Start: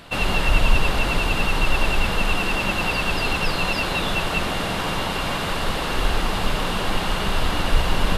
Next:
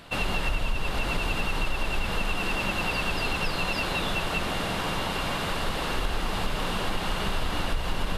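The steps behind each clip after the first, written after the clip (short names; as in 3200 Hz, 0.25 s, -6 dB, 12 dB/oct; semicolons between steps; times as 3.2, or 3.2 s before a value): compressor, threshold -18 dBFS, peak gain reduction 9 dB; gain -4 dB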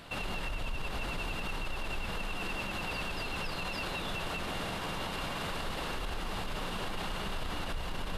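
limiter -25.5 dBFS, peak gain reduction 11 dB; gain -2 dB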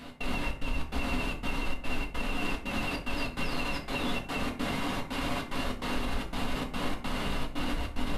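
step gate "x.xxx.xx.xxx" 147 bpm -60 dB; small resonant body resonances 250/2100 Hz, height 10 dB, ringing for 45 ms; reverb RT60 0.55 s, pre-delay 4 ms, DRR 0.5 dB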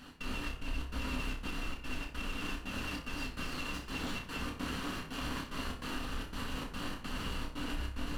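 minimum comb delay 0.69 ms; on a send: flutter echo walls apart 5.3 m, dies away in 0.27 s; on the sum: gain -5.5 dB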